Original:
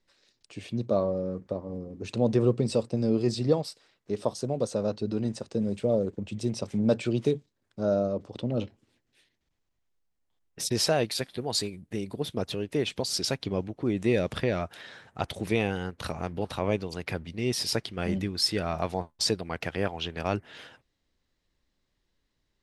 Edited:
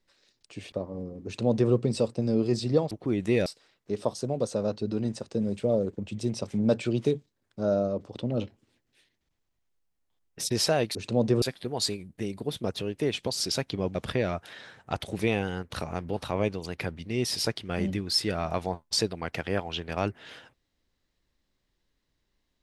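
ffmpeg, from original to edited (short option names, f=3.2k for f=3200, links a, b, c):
-filter_complex "[0:a]asplit=7[a][b][c][d][e][f][g];[a]atrim=end=0.722[h];[b]atrim=start=1.468:end=3.662[i];[c]atrim=start=13.678:end=14.232[j];[d]atrim=start=3.658:end=11.152[k];[e]atrim=start=1.998:end=2.472[l];[f]atrim=start=11.148:end=13.682[m];[g]atrim=start=14.228[n];[h][i]acrossfade=d=0.004:c1=hsin:c2=hsin[o];[o][j]acrossfade=d=0.004:c1=hsin:c2=hsin[p];[p][k]acrossfade=d=0.004:c1=hsin:c2=hsin[q];[q][l]acrossfade=d=0.004:c1=hsin:c2=hsin[r];[r][m]acrossfade=d=0.004:c1=hsin:c2=hsin[s];[s][n]acrossfade=d=0.004:c1=hsin:c2=hsin"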